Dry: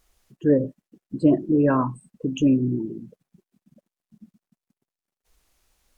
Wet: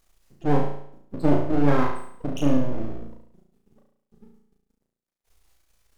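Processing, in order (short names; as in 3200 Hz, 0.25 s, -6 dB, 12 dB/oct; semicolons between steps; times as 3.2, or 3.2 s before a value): half-wave rectifier; flutter echo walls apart 6 m, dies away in 0.65 s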